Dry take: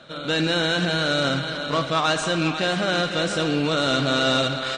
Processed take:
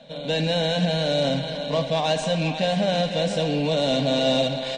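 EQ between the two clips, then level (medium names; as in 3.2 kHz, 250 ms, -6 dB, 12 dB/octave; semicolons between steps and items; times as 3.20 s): treble shelf 4.3 kHz -10.5 dB; static phaser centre 350 Hz, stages 6; +3.5 dB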